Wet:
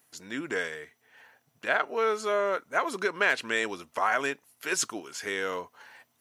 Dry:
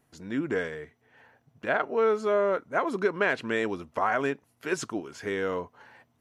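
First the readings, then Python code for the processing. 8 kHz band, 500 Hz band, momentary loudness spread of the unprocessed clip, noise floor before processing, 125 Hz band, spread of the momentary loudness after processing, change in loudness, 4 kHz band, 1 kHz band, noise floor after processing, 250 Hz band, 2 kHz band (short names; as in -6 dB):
+10.0 dB, -3.5 dB, 11 LU, -70 dBFS, -9.5 dB, 11 LU, -0.5 dB, +6.5 dB, 0.0 dB, -72 dBFS, -6.5 dB, +2.5 dB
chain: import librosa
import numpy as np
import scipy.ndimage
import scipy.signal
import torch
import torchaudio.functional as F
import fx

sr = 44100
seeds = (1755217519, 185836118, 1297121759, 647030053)

y = fx.tilt_eq(x, sr, slope=3.5)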